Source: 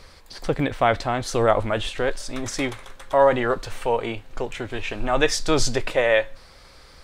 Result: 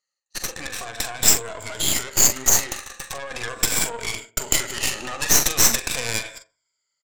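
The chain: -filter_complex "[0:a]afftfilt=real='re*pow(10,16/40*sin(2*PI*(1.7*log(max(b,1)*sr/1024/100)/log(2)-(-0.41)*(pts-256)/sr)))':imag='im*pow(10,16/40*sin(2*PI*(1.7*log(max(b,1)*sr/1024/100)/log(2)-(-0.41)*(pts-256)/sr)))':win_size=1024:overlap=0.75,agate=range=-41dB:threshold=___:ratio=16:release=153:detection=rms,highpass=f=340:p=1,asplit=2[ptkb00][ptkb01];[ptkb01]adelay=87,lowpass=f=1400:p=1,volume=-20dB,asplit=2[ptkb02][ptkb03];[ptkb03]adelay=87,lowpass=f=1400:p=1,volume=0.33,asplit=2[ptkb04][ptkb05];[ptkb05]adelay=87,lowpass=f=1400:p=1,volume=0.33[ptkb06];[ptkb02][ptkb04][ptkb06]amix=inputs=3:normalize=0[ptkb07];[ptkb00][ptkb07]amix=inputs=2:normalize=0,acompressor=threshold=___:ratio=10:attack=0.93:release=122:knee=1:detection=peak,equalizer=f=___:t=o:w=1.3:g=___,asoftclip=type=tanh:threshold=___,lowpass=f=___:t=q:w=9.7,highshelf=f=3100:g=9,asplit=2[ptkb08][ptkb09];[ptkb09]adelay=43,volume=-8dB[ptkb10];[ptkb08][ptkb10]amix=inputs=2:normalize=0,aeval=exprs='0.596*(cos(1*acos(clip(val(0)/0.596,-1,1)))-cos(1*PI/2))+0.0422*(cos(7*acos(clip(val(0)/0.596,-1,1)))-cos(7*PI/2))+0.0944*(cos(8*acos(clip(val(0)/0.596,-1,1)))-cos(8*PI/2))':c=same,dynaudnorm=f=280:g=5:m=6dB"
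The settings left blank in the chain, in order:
-34dB, -28dB, 1900, 6.5, -24.5dB, 7300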